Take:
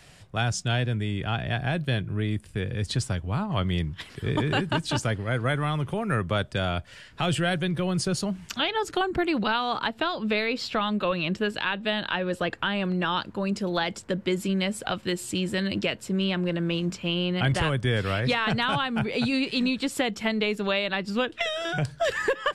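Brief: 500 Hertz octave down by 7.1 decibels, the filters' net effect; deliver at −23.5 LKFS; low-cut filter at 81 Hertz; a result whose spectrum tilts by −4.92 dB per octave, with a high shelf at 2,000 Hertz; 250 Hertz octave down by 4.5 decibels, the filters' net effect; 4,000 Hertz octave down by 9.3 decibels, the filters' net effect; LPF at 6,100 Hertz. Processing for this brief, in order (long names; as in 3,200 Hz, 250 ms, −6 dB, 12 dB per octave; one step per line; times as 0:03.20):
high-pass filter 81 Hz
low-pass filter 6,100 Hz
parametric band 250 Hz −4.5 dB
parametric band 500 Hz −7.5 dB
high-shelf EQ 2,000 Hz −5 dB
parametric band 4,000 Hz −7.5 dB
level +8 dB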